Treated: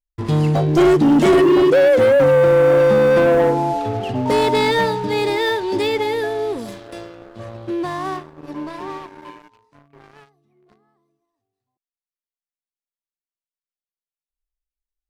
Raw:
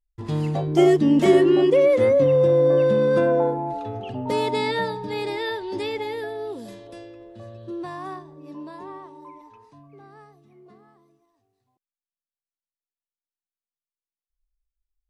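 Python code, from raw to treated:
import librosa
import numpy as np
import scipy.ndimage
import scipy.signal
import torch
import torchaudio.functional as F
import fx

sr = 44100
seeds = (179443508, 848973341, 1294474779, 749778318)

y = fx.leveller(x, sr, passes=3)
y = y * 10.0 ** (-2.5 / 20.0)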